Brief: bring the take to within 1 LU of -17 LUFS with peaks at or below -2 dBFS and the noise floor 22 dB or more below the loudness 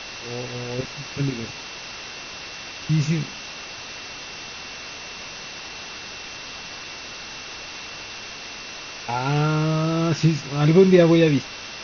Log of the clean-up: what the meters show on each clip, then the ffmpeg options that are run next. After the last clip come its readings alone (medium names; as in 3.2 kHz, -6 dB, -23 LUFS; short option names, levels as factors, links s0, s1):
steady tone 2.7 kHz; tone level -41 dBFS; noise floor -37 dBFS; noise floor target -47 dBFS; loudness -24.5 LUFS; peak level -3.5 dBFS; loudness target -17.0 LUFS
-> -af "bandreject=f=2700:w=30"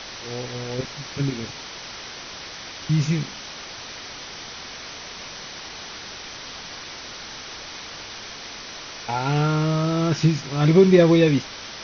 steady tone not found; noise floor -38 dBFS; noise floor target -46 dBFS
-> -af "afftdn=nr=8:nf=-38"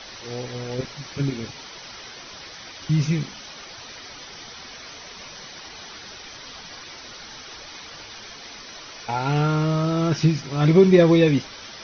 noise floor -41 dBFS; noise floor target -43 dBFS
-> -af "afftdn=nr=6:nf=-41"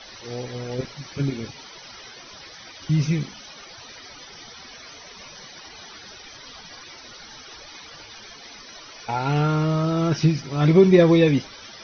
noise floor -44 dBFS; loudness -21.0 LUFS; peak level -3.5 dBFS; loudness target -17.0 LUFS
-> -af "volume=1.58,alimiter=limit=0.794:level=0:latency=1"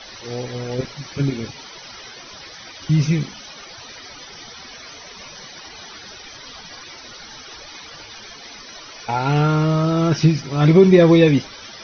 loudness -17.5 LUFS; peak level -2.0 dBFS; noise floor -40 dBFS